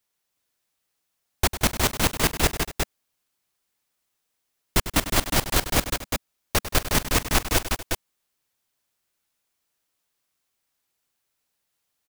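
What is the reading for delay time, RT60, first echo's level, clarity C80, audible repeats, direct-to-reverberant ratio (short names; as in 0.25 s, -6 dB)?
99 ms, none, -12.5 dB, none, 4, none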